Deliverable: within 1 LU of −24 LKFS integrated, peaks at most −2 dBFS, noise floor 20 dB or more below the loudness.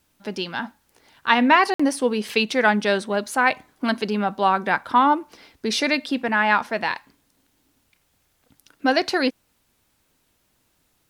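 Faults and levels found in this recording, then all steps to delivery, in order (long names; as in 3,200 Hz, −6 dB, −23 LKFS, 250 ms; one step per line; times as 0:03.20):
number of dropouts 1; longest dropout 55 ms; integrated loudness −21.5 LKFS; sample peak −1.5 dBFS; target loudness −24.0 LKFS
→ repair the gap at 0:01.74, 55 ms
level −2.5 dB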